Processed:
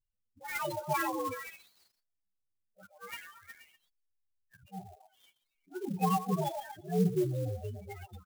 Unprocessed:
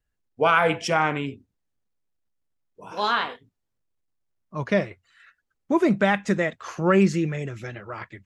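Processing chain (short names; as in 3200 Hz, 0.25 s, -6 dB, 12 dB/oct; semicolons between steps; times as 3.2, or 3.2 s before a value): inharmonic rescaling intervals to 128%; 3.16–4.64 elliptic band-stop 110–1600 Hz; auto swell 0.438 s; delay with a stepping band-pass 0.12 s, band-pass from 660 Hz, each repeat 0.7 oct, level -5 dB; flange 0.39 Hz, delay 9.3 ms, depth 2.9 ms, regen -5%; loudest bins only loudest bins 8; downsampling 11025 Hz; clock jitter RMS 0.035 ms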